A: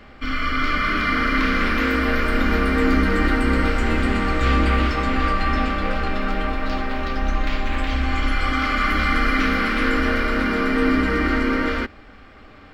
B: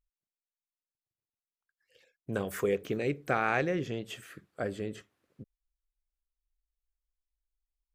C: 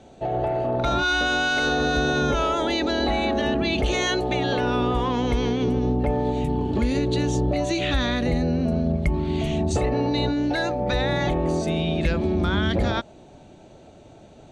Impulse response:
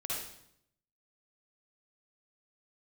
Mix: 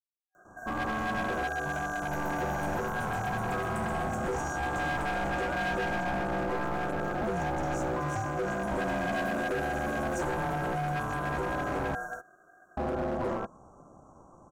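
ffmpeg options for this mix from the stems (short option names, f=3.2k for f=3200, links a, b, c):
-filter_complex "[0:a]highpass=f=900:w=0.5412,highpass=f=900:w=1.3066,acontrast=56,asoftclip=type=tanh:threshold=-7.5dB,adelay=350,volume=-5.5dB[a];[2:a]acrossover=split=460[b][c];[c]acompressor=threshold=-24dB:ratio=6[d];[b][d]amix=inputs=2:normalize=0,adelay=450,volume=-3.5dB,asplit=3[e][f][g];[e]atrim=end=11.95,asetpts=PTS-STARTPTS,afade=t=out:st=11.946:d=0.004:c=hsin[h];[f]atrim=start=11.95:end=12.77,asetpts=PTS-STARTPTS,volume=0[i];[g]atrim=start=12.77,asetpts=PTS-STARTPTS,afade=t=in:d=0.004:c=hsin[j];[h][i][j]concat=n=3:v=0:a=1[k];[a][k]amix=inputs=2:normalize=0,afftfilt=real='re*(1-between(b*sr/4096,1200,6000))':imag='im*(1-between(b*sr/4096,1200,6000))':win_size=4096:overlap=0.75,aeval=exprs='val(0)*sin(2*PI*440*n/s)':c=same,asoftclip=type=hard:threshold=-26.5dB"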